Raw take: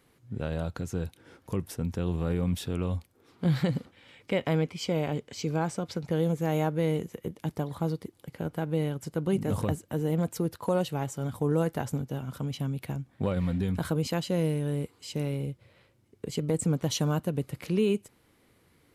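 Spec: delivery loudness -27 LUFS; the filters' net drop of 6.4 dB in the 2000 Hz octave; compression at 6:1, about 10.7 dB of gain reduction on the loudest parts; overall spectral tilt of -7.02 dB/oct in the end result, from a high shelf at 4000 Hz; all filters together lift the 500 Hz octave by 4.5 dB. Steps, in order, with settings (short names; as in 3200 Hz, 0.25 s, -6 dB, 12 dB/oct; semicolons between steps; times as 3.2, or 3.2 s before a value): bell 500 Hz +5.5 dB; bell 2000 Hz -7.5 dB; high shelf 4000 Hz -6 dB; compressor 6:1, threshold -31 dBFS; gain +10 dB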